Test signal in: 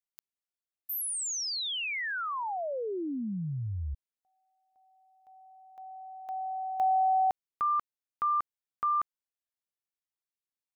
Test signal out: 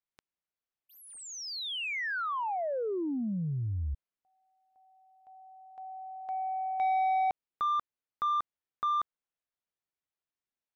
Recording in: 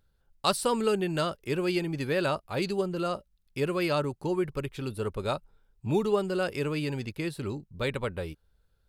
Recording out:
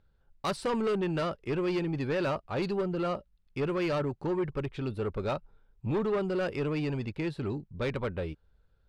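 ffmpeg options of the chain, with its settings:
-af "adynamicsmooth=sensitivity=2:basefreq=6.1k,asoftclip=type=tanh:threshold=-27dB,aemphasis=mode=reproduction:type=cd,volume=2dB"

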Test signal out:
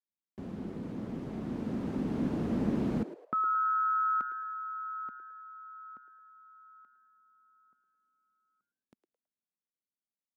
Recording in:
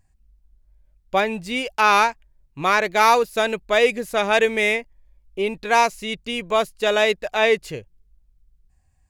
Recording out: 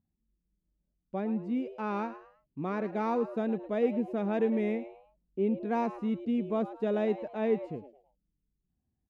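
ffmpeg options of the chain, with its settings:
-filter_complex "[0:a]dynaudnorm=f=290:g=13:m=14dB,bandpass=f=230:t=q:w=2.5:csg=0,asplit=4[a][b][c][d];[b]adelay=108,afreqshift=130,volume=-14dB[e];[c]adelay=216,afreqshift=260,volume=-23.9dB[f];[d]adelay=324,afreqshift=390,volume=-33.8dB[g];[a][e][f][g]amix=inputs=4:normalize=0,volume=-1.5dB"

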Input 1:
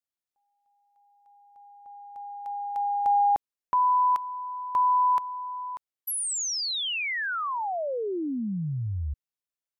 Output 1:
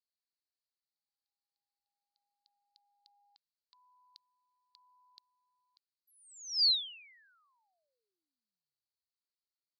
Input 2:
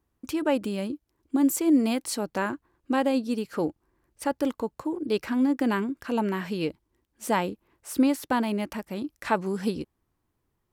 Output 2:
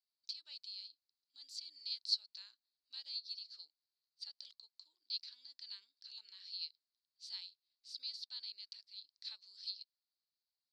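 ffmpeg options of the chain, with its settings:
-af "asuperpass=centerf=4400:order=4:qfactor=4.7,volume=4.5dB"

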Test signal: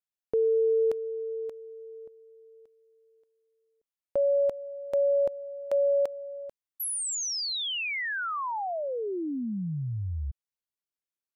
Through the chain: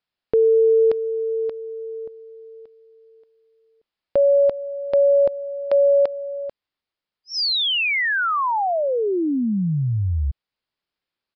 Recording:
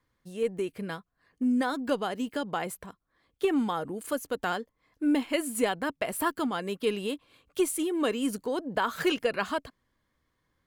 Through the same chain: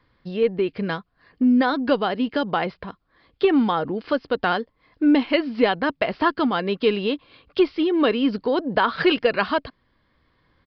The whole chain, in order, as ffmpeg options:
-filter_complex "[0:a]asplit=2[a][b];[b]acompressor=threshold=-34dB:ratio=6:attack=1.5:release=887:detection=rms,volume=0dB[c];[a][c]amix=inputs=2:normalize=0,aresample=11025,aresample=44100,volume=6.5dB"

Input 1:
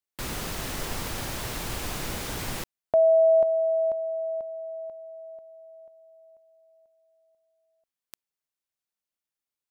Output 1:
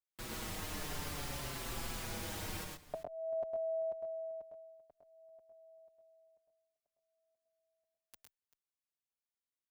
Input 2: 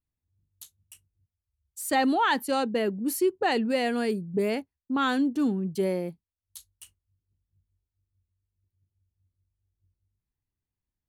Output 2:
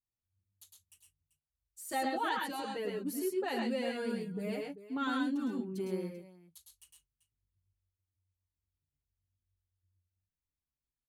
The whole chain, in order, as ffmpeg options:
-filter_complex "[0:a]aecho=1:1:107|128|389:0.668|0.501|0.158,asplit=2[a][b];[b]adelay=5.6,afreqshift=-0.53[c];[a][c]amix=inputs=2:normalize=1,volume=-8.5dB"

